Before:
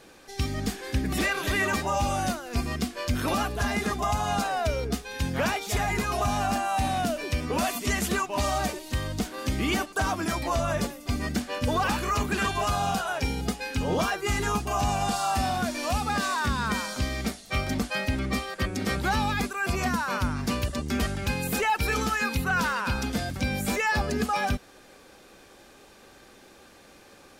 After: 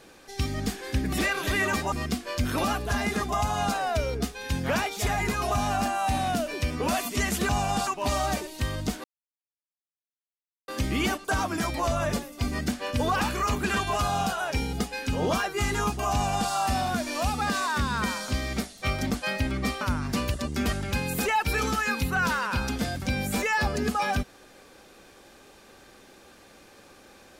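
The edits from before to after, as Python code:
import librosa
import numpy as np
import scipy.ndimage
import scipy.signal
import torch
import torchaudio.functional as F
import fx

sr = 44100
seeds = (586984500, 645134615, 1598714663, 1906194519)

y = fx.edit(x, sr, fx.cut(start_s=1.92, length_s=0.7),
    fx.insert_silence(at_s=9.36, length_s=1.64),
    fx.duplicate(start_s=14.81, length_s=0.38, to_s=8.19),
    fx.cut(start_s=18.49, length_s=1.66), tone=tone)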